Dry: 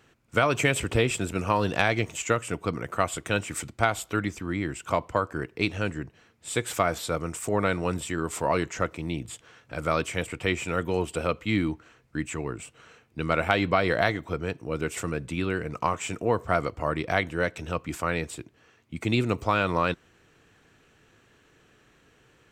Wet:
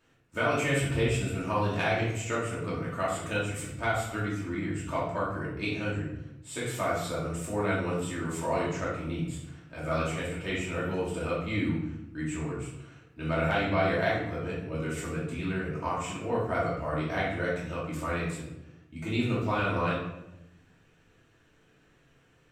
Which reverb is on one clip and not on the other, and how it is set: shoebox room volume 270 m³, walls mixed, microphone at 2.7 m; gain -12.5 dB

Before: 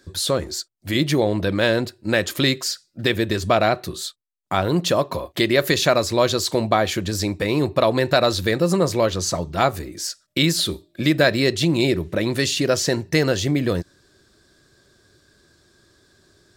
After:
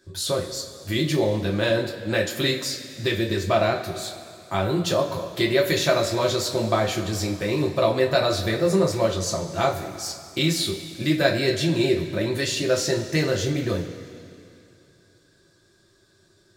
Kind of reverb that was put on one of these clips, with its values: two-slope reverb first 0.25 s, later 2.7 s, from -17 dB, DRR -1 dB; gain -7 dB

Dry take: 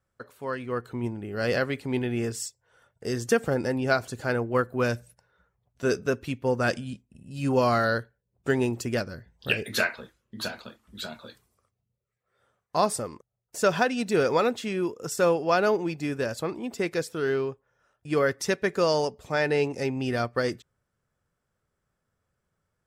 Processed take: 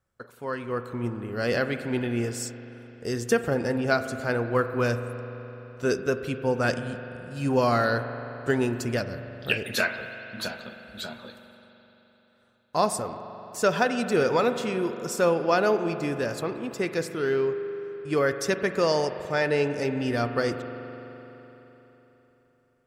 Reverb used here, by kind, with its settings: spring tank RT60 3.8 s, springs 42 ms, chirp 50 ms, DRR 9 dB

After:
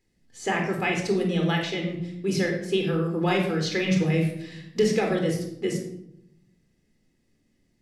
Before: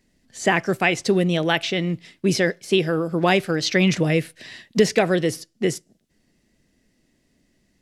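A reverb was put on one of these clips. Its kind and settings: shoebox room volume 2000 m³, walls furnished, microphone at 4 m; gain -10 dB

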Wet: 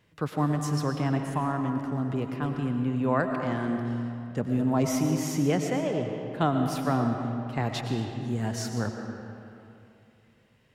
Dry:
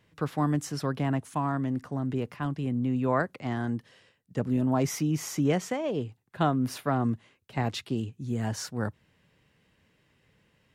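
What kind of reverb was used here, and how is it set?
digital reverb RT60 2.7 s, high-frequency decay 0.65×, pre-delay 70 ms, DRR 4 dB

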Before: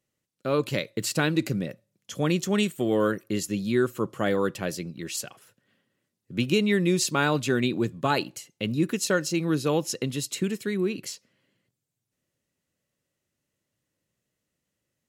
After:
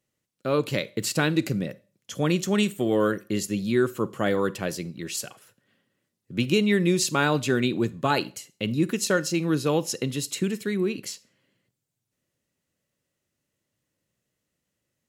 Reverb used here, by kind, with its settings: Schroeder reverb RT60 0.35 s, combs from 31 ms, DRR 19 dB; gain +1 dB

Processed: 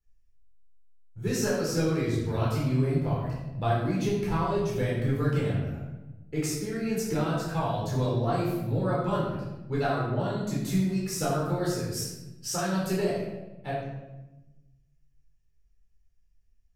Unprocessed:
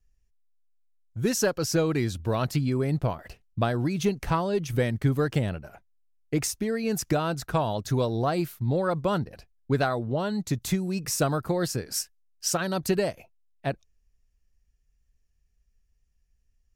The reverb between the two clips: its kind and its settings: shoebox room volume 510 m³, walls mixed, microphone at 4.2 m; gain -12.5 dB

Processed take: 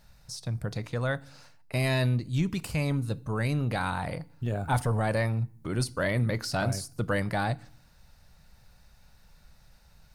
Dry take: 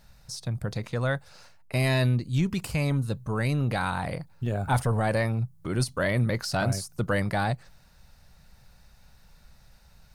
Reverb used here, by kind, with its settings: FDN reverb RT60 0.52 s, low-frequency decay 1.45×, high-frequency decay 0.95×, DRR 17.5 dB; gain -2 dB

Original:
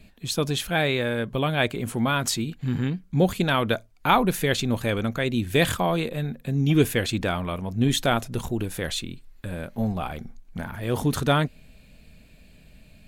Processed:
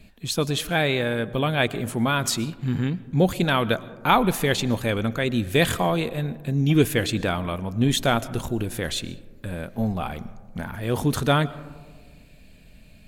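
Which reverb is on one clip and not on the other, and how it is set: digital reverb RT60 1.6 s, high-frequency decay 0.25×, pre-delay 80 ms, DRR 18 dB; gain +1 dB

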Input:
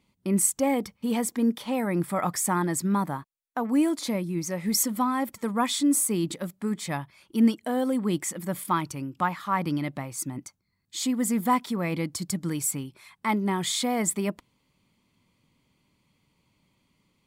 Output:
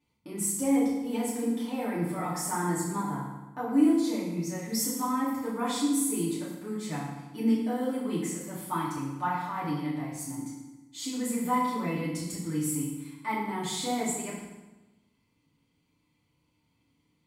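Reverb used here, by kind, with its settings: FDN reverb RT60 1.1 s, low-frequency decay 1.25×, high-frequency decay 0.8×, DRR -9.5 dB; gain -14.5 dB

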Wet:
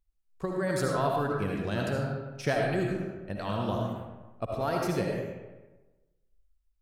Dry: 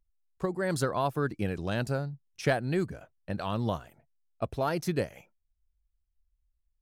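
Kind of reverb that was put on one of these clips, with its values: digital reverb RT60 1.2 s, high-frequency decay 0.6×, pre-delay 35 ms, DRR -1 dB; gain -2.5 dB

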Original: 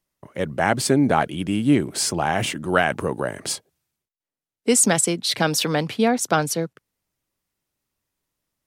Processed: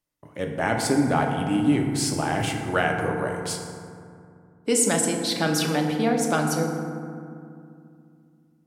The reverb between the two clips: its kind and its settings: FDN reverb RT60 2.4 s, low-frequency decay 1.45×, high-frequency decay 0.4×, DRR 1.5 dB; gain -5.5 dB

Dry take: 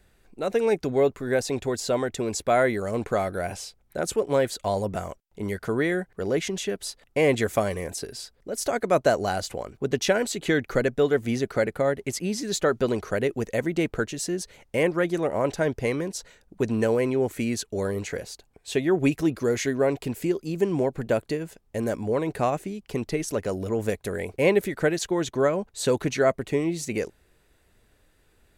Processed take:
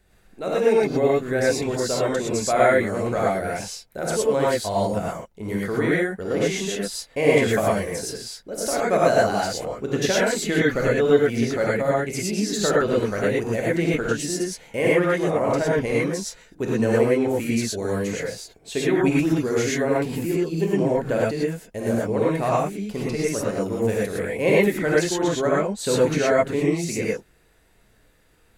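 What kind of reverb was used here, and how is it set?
non-linear reverb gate 0.14 s rising, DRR -6 dB; gain -2.5 dB

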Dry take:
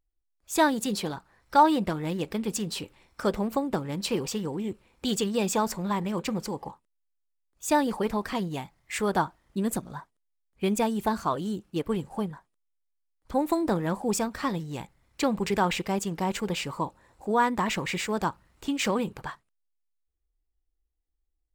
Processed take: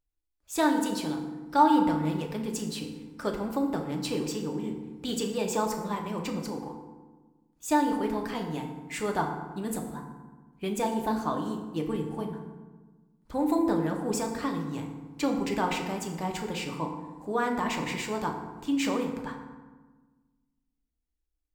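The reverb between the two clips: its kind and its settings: FDN reverb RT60 1.3 s, low-frequency decay 1.4×, high-frequency decay 0.55×, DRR 2 dB; gain -5 dB

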